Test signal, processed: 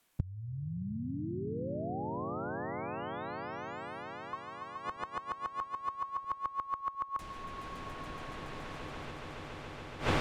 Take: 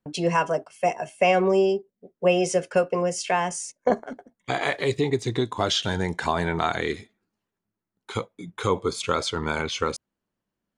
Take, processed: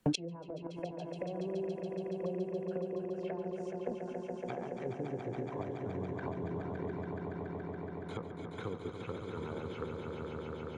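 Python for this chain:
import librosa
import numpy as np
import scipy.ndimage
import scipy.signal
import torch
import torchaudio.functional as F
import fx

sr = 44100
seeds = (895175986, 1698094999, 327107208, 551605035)

y = fx.env_lowpass_down(x, sr, base_hz=390.0, full_db=-20.5)
y = fx.peak_eq(y, sr, hz=5100.0, db=-3.0, octaves=0.74)
y = fx.echo_swell(y, sr, ms=141, loudest=5, wet_db=-7)
y = fx.gate_flip(y, sr, shuts_db=-25.0, range_db=-26)
y = fx.band_squash(y, sr, depth_pct=40)
y = y * librosa.db_to_amplitude(11.0)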